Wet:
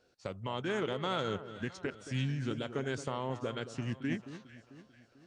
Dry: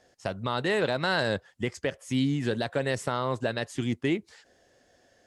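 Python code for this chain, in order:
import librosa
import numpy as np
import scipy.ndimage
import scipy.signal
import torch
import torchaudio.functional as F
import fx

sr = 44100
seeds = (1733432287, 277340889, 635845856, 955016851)

y = fx.echo_alternate(x, sr, ms=222, hz=1600.0, feedback_pct=65, wet_db=-12.0)
y = fx.formant_shift(y, sr, semitones=-3)
y = F.gain(torch.from_numpy(y), -7.5).numpy()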